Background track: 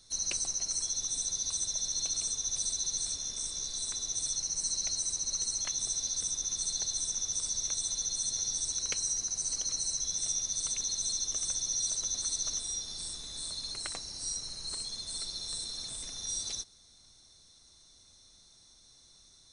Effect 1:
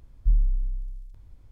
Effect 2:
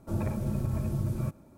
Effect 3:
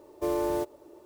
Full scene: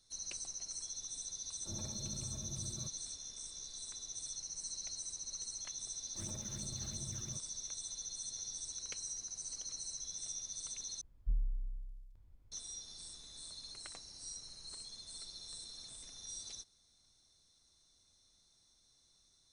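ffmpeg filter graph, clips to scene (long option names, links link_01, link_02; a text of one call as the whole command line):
ffmpeg -i bed.wav -i cue0.wav -i cue1.wav -filter_complex "[2:a]asplit=2[link_01][link_02];[0:a]volume=-11dB[link_03];[link_02]acrusher=samples=17:mix=1:aa=0.000001:lfo=1:lforange=27.2:lforate=2.9[link_04];[1:a]asoftclip=type=hard:threshold=-13.5dB[link_05];[link_03]asplit=2[link_06][link_07];[link_06]atrim=end=11.014[link_08];[link_05]atrim=end=1.51,asetpts=PTS-STARTPTS,volume=-13.5dB[link_09];[link_07]atrim=start=12.516[link_10];[link_01]atrim=end=1.57,asetpts=PTS-STARTPTS,volume=-16.5dB,afade=type=in:duration=0.004:curve=hsin,afade=type=out:start_time=1.566:duration=0.004:curve=hsin,adelay=1580[link_11];[link_04]atrim=end=1.57,asetpts=PTS-STARTPTS,volume=-17.5dB,afade=type=in:duration=0.004:curve=hsin,afade=type=out:start_time=1.566:duration=0.004:curve=hsin,adelay=6080[link_12];[link_08][link_09]acrossfade=duration=0.004:curve1=hsin:curve2=hsin[link_13];[link_13][link_10]acrossfade=duration=0.004:curve1=hsin:curve2=hsin[link_14];[link_14][link_11][link_12]amix=inputs=3:normalize=0" out.wav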